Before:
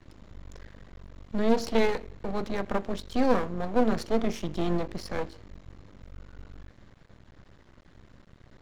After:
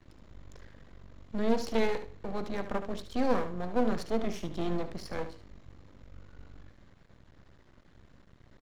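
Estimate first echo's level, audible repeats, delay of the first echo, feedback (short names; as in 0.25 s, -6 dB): -11.0 dB, 2, 73 ms, 15%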